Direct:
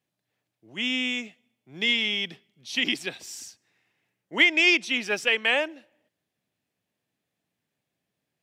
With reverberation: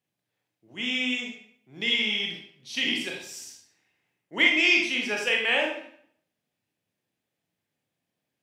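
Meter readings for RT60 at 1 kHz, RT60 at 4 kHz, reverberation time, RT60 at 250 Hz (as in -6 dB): 0.65 s, 0.50 s, 0.60 s, 0.60 s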